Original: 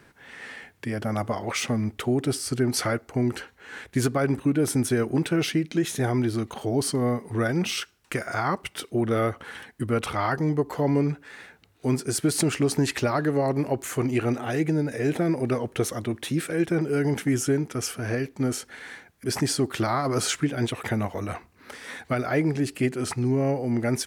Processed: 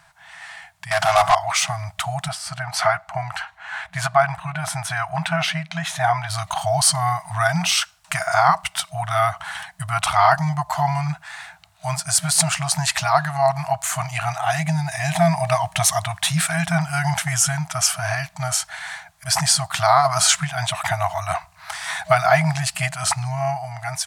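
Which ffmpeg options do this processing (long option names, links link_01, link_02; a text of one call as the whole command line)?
ffmpeg -i in.wav -filter_complex "[0:a]asettb=1/sr,asplit=3[link_01][link_02][link_03];[link_01]atrim=end=0.914[link_04];[link_02]atrim=start=0.91:end=1.35,asetpts=PTS-STARTPTS,afade=type=in:duration=0.004:curve=qsin,afade=type=out:start_time=0.436:duration=0.004:curve=qsin,asplit=2[link_05][link_06];[link_06]highpass=frequency=720:poles=1,volume=26dB,asoftclip=type=tanh:threshold=-12.5dB[link_07];[link_05][link_07]amix=inputs=2:normalize=0,lowpass=frequency=5000:poles=1,volume=-6dB[link_08];[link_03]atrim=start=1.346[link_09];[link_04][link_08]acrossfade=duration=0.004:curve1=hsin:curve2=qsin[link_10];[link_10][link_09]acrossfade=duration=0.004:curve1=qsin:curve2=hsin,asettb=1/sr,asplit=3[link_11][link_12][link_13];[link_11]atrim=end=2.284[link_14];[link_12]atrim=start=2.28:end=6.3,asetpts=PTS-STARTPTS,afade=type=in:duration=0.004:curve=qsin,afade=type=out:start_time=4.016:duration=0.004:curve=qsin,bass=frequency=250:gain=-6,treble=frequency=4000:gain=-13[link_15];[link_13]atrim=start=6.296[link_16];[link_14][link_15]acrossfade=duration=0.004:curve1=hsin:curve2=qsin[link_17];[link_17][link_16]acrossfade=duration=0.004:curve1=qsin:curve2=hsin,asettb=1/sr,asplit=3[link_18][link_19][link_20];[link_18]atrim=end=14.604[link_21];[link_19]atrim=start=14.6:end=16.02,asetpts=PTS-STARTPTS,afade=type=in:duration=0.004:curve=qsin,afade=type=out:start_time=1.416:duration=0.004:curve=qsin,equalizer=frequency=1400:width=7.3:gain=-10.5[link_22];[link_20]atrim=start=16.016[link_23];[link_21][link_22]acrossfade=duration=0.004:curve1=hsin:curve2=qsin[link_24];[link_24][link_23]acrossfade=duration=0.004:curve1=qsin:curve2=hsin,afftfilt=real='re*(1-between(b*sr/4096,180,630))':imag='im*(1-between(b*sr/4096,180,630))':win_size=4096:overlap=0.75,equalizer=frequency=125:width_type=o:width=1:gain=-6,equalizer=frequency=250:width_type=o:width=1:gain=9,equalizer=frequency=500:width_type=o:width=1:gain=9,equalizer=frequency=1000:width_type=o:width=1:gain=5,equalizer=frequency=4000:width_type=o:width=1:gain=4,equalizer=frequency=8000:width_type=o:width=1:gain=7,dynaudnorm=framelen=280:gausssize=9:maxgain=12dB,volume=-1dB" out.wav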